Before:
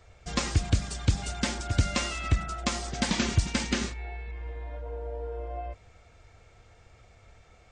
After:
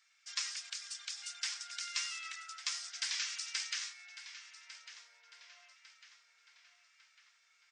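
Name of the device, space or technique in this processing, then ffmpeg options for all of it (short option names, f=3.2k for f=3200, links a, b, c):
headphones lying on a table: -filter_complex "[0:a]highpass=f=1.5k:w=0.5412,highpass=f=1.5k:w=1.3066,equalizer=f=5.3k:t=o:w=0.46:g=7.5,asplit=2[a][b];[b]adelay=1150,lowpass=f=4.7k:p=1,volume=-12dB,asplit=2[c][d];[d]adelay=1150,lowpass=f=4.7k:p=1,volume=0.53,asplit=2[e][f];[f]adelay=1150,lowpass=f=4.7k:p=1,volume=0.53,asplit=2[g][h];[h]adelay=1150,lowpass=f=4.7k:p=1,volume=0.53,asplit=2[i][j];[j]adelay=1150,lowpass=f=4.7k:p=1,volume=0.53,asplit=2[k][l];[l]adelay=1150,lowpass=f=4.7k:p=1,volume=0.53[m];[a][c][e][g][i][k][m]amix=inputs=7:normalize=0,volume=-7.5dB"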